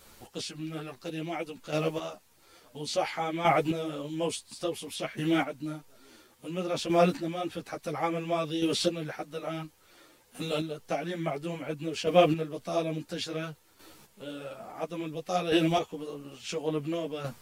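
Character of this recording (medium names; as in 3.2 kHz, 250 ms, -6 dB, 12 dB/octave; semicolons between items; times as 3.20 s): chopped level 0.58 Hz, depth 60%, duty 15%; a shimmering, thickened sound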